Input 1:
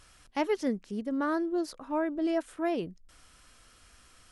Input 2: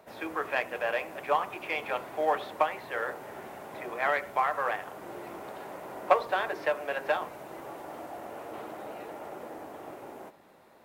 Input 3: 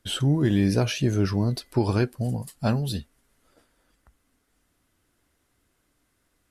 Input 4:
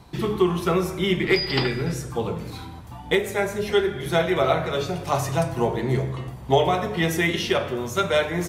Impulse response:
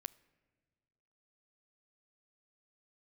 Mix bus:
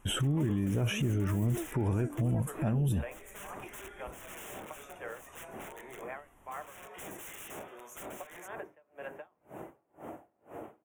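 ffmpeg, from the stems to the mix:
-filter_complex "[0:a]volume=0.355[s0];[1:a]lowshelf=f=440:g=10.5,aeval=exprs='val(0)*pow(10,-40*(0.5-0.5*cos(2*PI*2*n/s))/20)':c=same,adelay=2100,volume=0.891[s1];[2:a]volume=1.12[s2];[3:a]highpass=680,aeval=exprs='(mod(18.8*val(0)+1,2)-1)/18.8':c=same,volume=0.237[s3];[s1][s3]amix=inputs=2:normalize=0,acompressor=threshold=0.00891:ratio=4,volume=1[s4];[s0][s2]amix=inputs=2:normalize=0,lowshelf=f=450:g=7.5,alimiter=limit=0.178:level=0:latency=1:release=253,volume=1[s5];[s4][s5]amix=inputs=2:normalize=0,asuperstop=centerf=4500:order=4:qfactor=1.3,alimiter=limit=0.0668:level=0:latency=1:release=20"

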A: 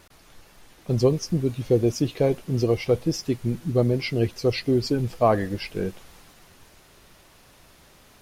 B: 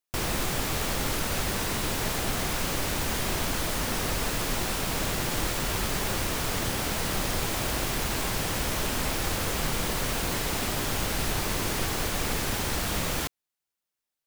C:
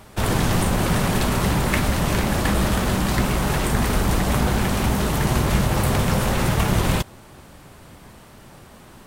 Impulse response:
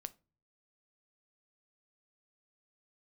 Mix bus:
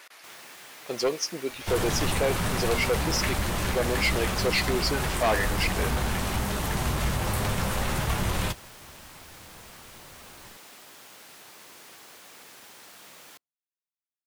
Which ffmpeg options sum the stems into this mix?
-filter_complex "[0:a]highpass=400,equalizer=f=2000:t=o:w=1.1:g=6,volume=1.33,asplit=2[s0][s1];[s1]volume=0.376[s2];[1:a]highpass=170,adelay=100,volume=0.133,asplit=2[s3][s4];[s4]volume=0.075[s5];[2:a]lowshelf=f=140:g=11.5,flanger=delay=9.5:depth=3.9:regen=-45:speed=1:shape=triangular,adelay=1500,volume=0.944[s6];[3:a]atrim=start_sample=2205[s7];[s2][s5]amix=inputs=2:normalize=0[s8];[s8][s7]afir=irnorm=-1:irlink=0[s9];[s0][s3][s6][s9]amix=inputs=4:normalize=0,lowshelf=f=400:g=-11.5,volume=9.44,asoftclip=hard,volume=0.106"

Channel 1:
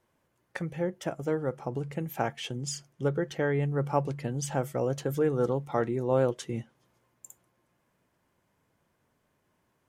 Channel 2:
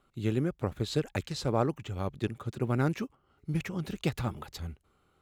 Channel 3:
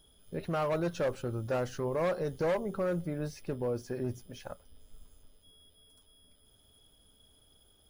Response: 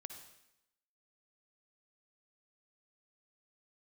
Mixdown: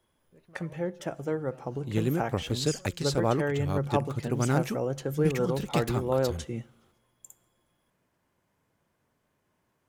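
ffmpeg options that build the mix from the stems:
-filter_complex "[0:a]volume=0.75,asplit=2[s0][s1];[s1]volume=0.299[s2];[1:a]adynamicequalizer=threshold=0.002:dfrequency=4200:dqfactor=0.7:tfrequency=4200:tqfactor=0.7:attack=5:release=100:ratio=0.375:range=3:mode=boostabove:tftype=highshelf,adelay=1700,volume=1.19[s3];[2:a]acompressor=threshold=0.00282:ratio=1.5,volume=0.168[s4];[3:a]atrim=start_sample=2205[s5];[s2][s5]afir=irnorm=-1:irlink=0[s6];[s0][s3][s4][s6]amix=inputs=4:normalize=0"

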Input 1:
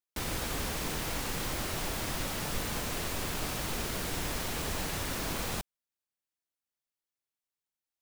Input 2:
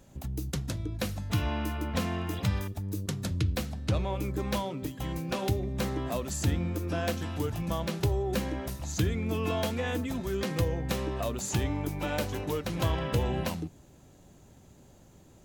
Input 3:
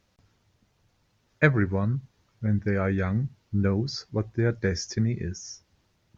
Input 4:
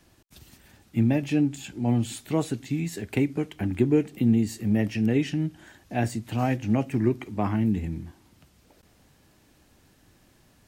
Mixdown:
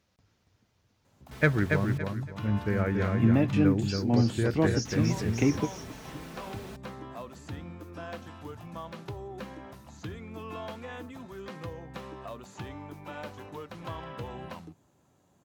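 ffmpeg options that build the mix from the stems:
-filter_complex "[0:a]highshelf=f=4800:g=-10.5,aecho=1:1:4.6:0.57,adelay=1150,volume=0.299,asplit=3[s0][s1][s2];[s0]atrim=end=1.98,asetpts=PTS-STARTPTS,afade=t=out:st=1.976:d=0.004:c=hsin[s3];[s1]atrim=start=1.98:end=4.85,asetpts=PTS-STARTPTS,volume=0[s4];[s2]atrim=start=4.85,asetpts=PTS-STARTPTS,afade=t=in:d=0.004:c=hsin[s5];[s3][s4][s5]concat=n=3:v=0:a=1[s6];[1:a]highpass=81,acrossover=split=4700[s7][s8];[s8]acompressor=threshold=0.00316:ratio=4:attack=1:release=60[s9];[s7][s9]amix=inputs=2:normalize=0,equalizer=f=1100:w=1.2:g=7.5,adelay=1050,volume=0.282[s10];[2:a]aeval=exprs='0.596*(cos(1*acos(clip(val(0)/0.596,-1,1)))-cos(1*PI/2))+0.015*(cos(6*acos(clip(val(0)/0.596,-1,1)))-cos(6*PI/2))':c=same,volume=0.668,asplit=3[s11][s12][s13];[s12]volume=0.596[s14];[3:a]highshelf=f=5200:g=-10.5,adelay=2250,volume=0.944[s15];[s13]apad=whole_len=569783[s16];[s15][s16]sidechaingate=range=0.0224:threshold=0.00158:ratio=16:detection=peak[s17];[s14]aecho=0:1:282|564|846|1128:1|0.28|0.0784|0.022[s18];[s6][s10][s11][s17][s18]amix=inputs=5:normalize=0,highpass=51"

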